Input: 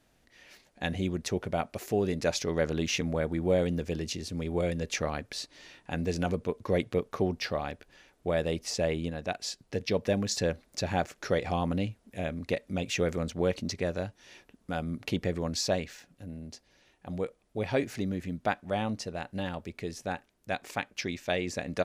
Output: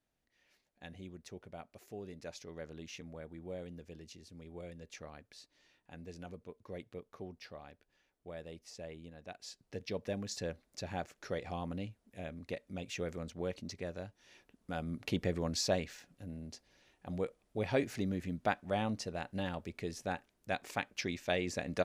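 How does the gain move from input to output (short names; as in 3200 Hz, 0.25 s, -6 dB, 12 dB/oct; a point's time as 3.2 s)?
9.05 s -18 dB
9.67 s -10.5 dB
14.03 s -10.5 dB
15.19 s -3.5 dB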